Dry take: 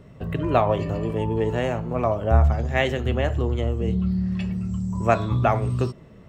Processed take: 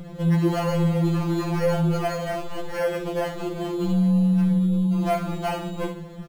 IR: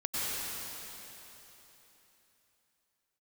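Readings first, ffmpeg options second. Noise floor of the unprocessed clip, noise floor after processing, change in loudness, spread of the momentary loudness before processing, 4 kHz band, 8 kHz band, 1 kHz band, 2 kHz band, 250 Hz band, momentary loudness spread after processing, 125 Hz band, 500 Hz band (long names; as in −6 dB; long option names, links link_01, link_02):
−46 dBFS, −38 dBFS, 0.0 dB, 7 LU, −0.5 dB, can't be measured, −4.0 dB, −4.0 dB, +4.5 dB, 10 LU, −1.0 dB, −2.0 dB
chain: -filter_complex "[0:a]alimiter=limit=-11dB:level=0:latency=1:release=290,aresample=11025,asoftclip=type=tanh:threshold=-28.5dB,aresample=44100,asplit=2[link_01][link_02];[link_02]adelay=71,lowpass=frequency=4300:poles=1,volume=-10dB,asplit=2[link_03][link_04];[link_04]adelay=71,lowpass=frequency=4300:poles=1,volume=0.39,asplit=2[link_05][link_06];[link_06]adelay=71,lowpass=frequency=4300:poles=1,volume=0.39,asplit=2[link_07][link_08];[link_08]adelay=71,lowpass=frequency=4300:poles=1,volume=0.39[link_09];[link_01][link_03][link_05][link_07][link_09]amix=inputs=5:normalize=0,asplit=2[link_10][link_11];[link_11]acompressor=threshold=-42dB:ratio=6,volume=-2dB[link_12];[link_10][link_12]amix=inputs=2:normalize=0,acrusher=samples=12:mix=1:aa=0.000001,highshelf=frequency=3000:gain=-11,asplit=2[link_13][link_14];[link_14]adelay=31,volume=-12.5dB[link_15];[link_13][link_15]amix=inputs=2:normalize=0,afftfilt=real='re*2.83*eq(mod(b,8),0)':imag='im*2.83*eq(mod(b,8),0)':win_size=2048:overlap=0.75,volume=8dB"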